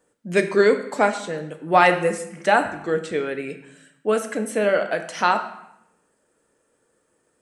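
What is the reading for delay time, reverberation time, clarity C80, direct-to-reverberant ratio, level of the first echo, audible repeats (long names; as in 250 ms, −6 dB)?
no echo audible, 0.75 s, 12.5 dB, 6.5 dB, no echo audible, no echo audible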